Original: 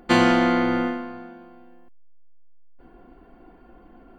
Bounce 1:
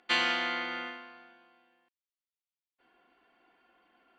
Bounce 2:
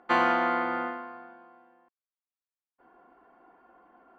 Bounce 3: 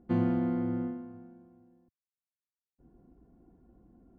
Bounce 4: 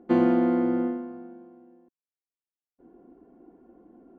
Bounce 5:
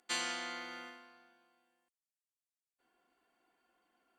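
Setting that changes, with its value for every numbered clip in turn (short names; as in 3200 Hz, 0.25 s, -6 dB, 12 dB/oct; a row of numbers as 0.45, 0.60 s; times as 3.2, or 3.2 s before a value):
band-pass, frequency: 3100, 1100, 110, 320, 8000 Hz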